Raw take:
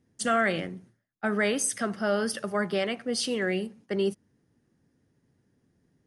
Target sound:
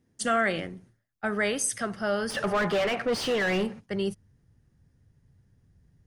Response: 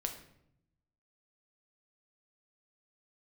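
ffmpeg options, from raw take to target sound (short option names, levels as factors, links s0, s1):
-filter_complex "[0:a]asubboost=boost=12:cutoff=85,asplit=3[s0][s1][s2];[s0]afade=t=out:st=2.29:d=0.02[s3];[s1]asplit=2[s4][s5];[s5]highpass=f=720:p=1,volume=22.4,asoftclip=type=tanh:threshold=0.141[s6];[s4][s6]amix=inputs=2:normalize=0,lowpass=f=1400:p=1,volume=0.501,afade=t=in:st=2.29:d=0.02,afade=t=out:st=3.79:d=0.02[s7];[s2]afade=t=in:st=3.79:d=0.02[s8];[s3][s7][s8]amix=inputs=3:normalize=0"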